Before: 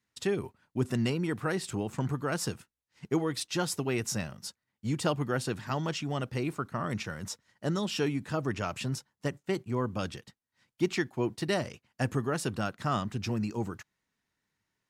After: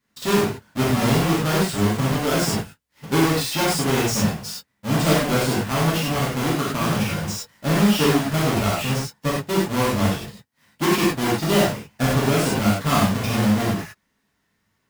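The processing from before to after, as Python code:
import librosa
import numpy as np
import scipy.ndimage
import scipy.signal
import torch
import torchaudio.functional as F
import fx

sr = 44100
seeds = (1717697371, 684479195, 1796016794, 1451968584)

y = fx.halfwave_hold(x, sr)
y = fx.rev_gated(y, sr, seeds[0], gate_ms=130, shape='flat', drr_db=-7.0)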